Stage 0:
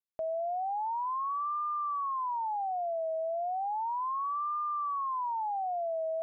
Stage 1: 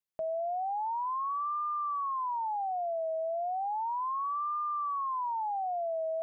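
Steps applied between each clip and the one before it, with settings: bell 170 Hz +8 dB 0.21 oct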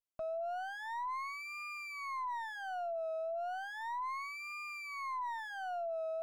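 minimum comb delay 3 ms; gain -5 dB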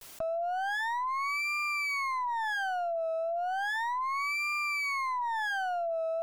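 vibrato 0.34 Hz 45 cents; fast leveller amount 100%; gain +6 dB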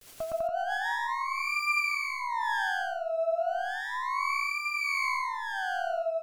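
rotary speaker horn 8 Hz, later 1.2 Hz, at 0.5; on a send: loudspeakers at several distances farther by 39 m 0 dB, 69 m -2 dB, 98 m -7 dB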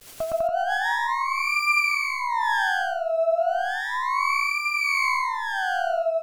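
crackle 220/s -60 dBFS; gain +6.5 dB

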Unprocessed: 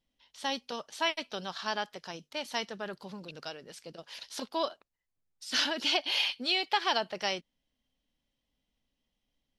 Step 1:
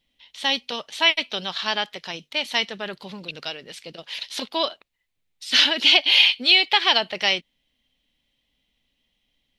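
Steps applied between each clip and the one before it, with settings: band shelf 2800 Hz +8.5 dB 1.3 oct; gain +6 dB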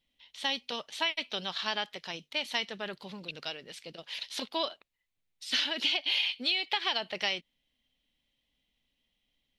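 compressor 10:1, threshold -19 dBFS, peak gain reduction 9 dB; gain -6.5 dB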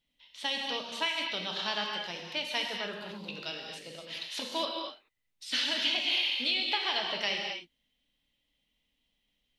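non-linear reverb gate 0.28 s flat, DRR 0.5 dB; gain -2 dB

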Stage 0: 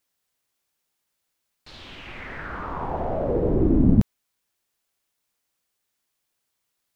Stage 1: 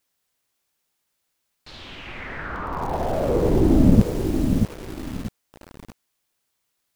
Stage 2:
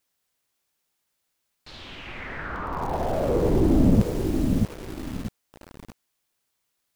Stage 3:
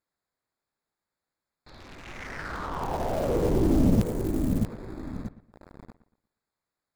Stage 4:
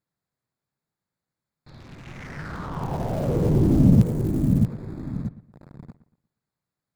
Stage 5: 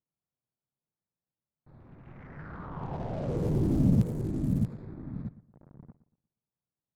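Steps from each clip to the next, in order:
lo-fi delay 0.635 s, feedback 35%, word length 6-bit, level -5.5 dB; gain +2.5 dB
soft clip -7.5 dBFS, distortion -17 dB; gain -1.5 dB
Wiener smoothing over 15 samples; high shelf 2300 Hz +8.5 dB; dark delay 0.118 s, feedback 32%, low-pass 3000 Hz, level -15.5 dB; gain -3 dB
bell 140 Hz +14.5 dB 1.4 oct; gain -2.5 dB
low-pass opened by the level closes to 990 Hz, open at -17 dBFS; gain -8 dB

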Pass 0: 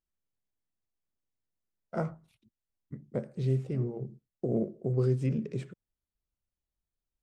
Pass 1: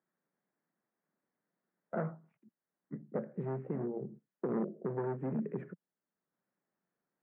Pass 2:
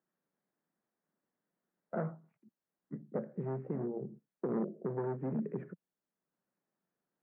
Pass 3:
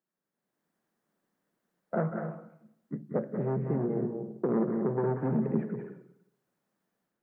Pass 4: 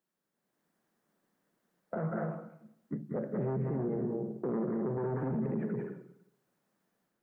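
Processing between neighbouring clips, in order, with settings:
overloaded stage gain 27.5 dB; elliptic band-pass 170–1800 Hz, stop band 40 dB; three-band squash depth 40%
high shelf 2200 Hz -7 dB
AGC gain up to 10 dB; reverb, pre-delay 0.182 s, DRR 4.5 dB; gain -3.5 dB
limiter -28.5 dBFS, peak gain reduction 11.5 dB; gain +2.5 dB

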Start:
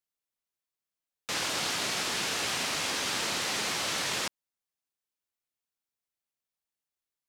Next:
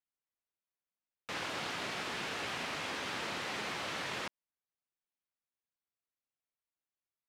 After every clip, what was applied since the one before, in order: tone controls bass 0 dB, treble -13 dB; gain -4.5 dB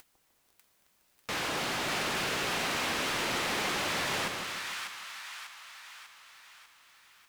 upward compressor, threshold -45 dBFS; sample leveller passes 5; split-band echo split 990 Hz, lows 0.152 s, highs 0.595 s, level -4.5 dB; gain -5 dB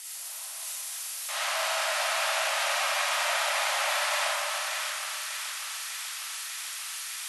switching spikes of -27.5 dBFS; brick-wall FIR band-pass 550–12000 Hz; reverb RT60 1.9 s, pre-delay 10 ms, DRR -6.5 dB; gain -3 dB

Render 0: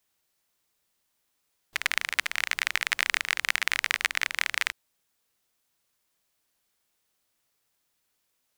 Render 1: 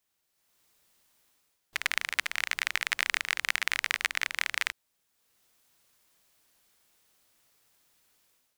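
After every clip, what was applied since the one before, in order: AGC gain up to 11.5 dB; gain -4 dB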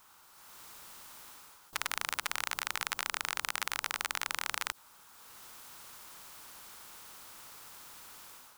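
band shelf 1100 Hz +13.5 dB 1 oct; maximiser +12.5 dB; spectral compressor 2:1; gain -9 dB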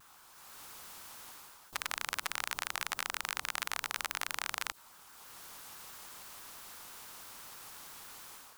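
limiter -14.5 dBFS, peak gain reduction 4.5 dB; shaped vibrato saw down 6.1 Hz, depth 250 cents; gain +1.5 dB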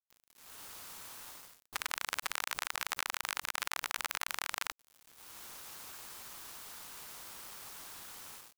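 bit-crush 8-bit

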